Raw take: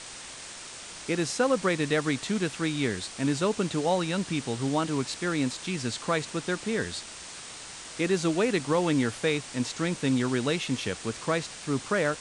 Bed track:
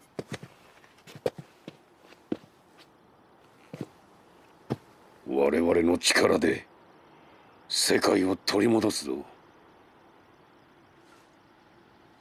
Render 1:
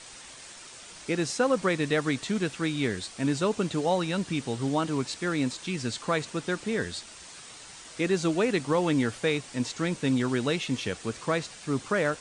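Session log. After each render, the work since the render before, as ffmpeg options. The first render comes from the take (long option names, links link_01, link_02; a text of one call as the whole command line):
ffmpeg -i in.wav -af "afftdn=noise_reduction=6:noise_floor=-43" out.wav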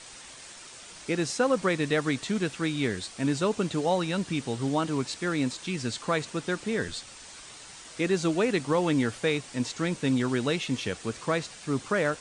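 ffmpeg -i in.wav -filter_complex "[0:a]asettb=1/sr,asplit=3[link_01][link_02][link_03];[link_01]atrim=end=6.884[link_04];[link_02]atrim=start=6.88:end=7.51,asetpts=PTS-STARTPTS,afade=type=in:duration=0.004:curve=qsin,afade=type=out:start_time=0.626:duration=0.004:curve=qsin,afreqshift=-97[link_05];[link_03]atrim=start=7.506[link_06];[link_04][link_05]acrossfade=duration=0.004:curve1=hsin:curve2=qsin[link_07];[link_07][link_06]acrossfade=duration=0.004:curve1=qsin:curve2=hsin" out.wav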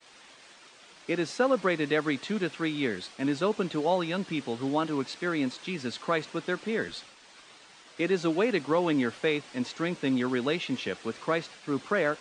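ffmpeg -i in.wav -filter_complex "[0:a]acrossover=split=170 4900:gain=0.178 1 0.2[link_01][link_02][link_03];[link_01][link_02][link_03]amix=inputs=3:normalize=0,agate=range=-33dB:threshold=-45dB:ratio=3:detection=peak" out.wav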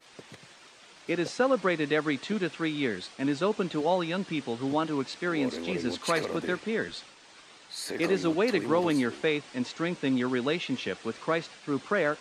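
ffmpeg -i in.wav -i bed.wav -filter_complex "[1:a]volume=-12dB[link_01];[0:a][link_01]amix=inputs=2:normalize=0" out.wav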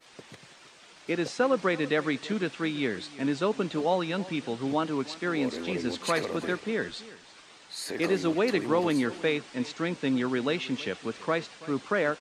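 ffmpeg -i in.wav -af "aecho=1:1:331:0.119" out.wav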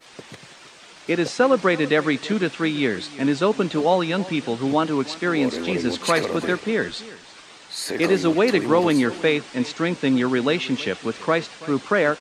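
ffmpeg -i in.wav -af "volume=7.5dB" out.wav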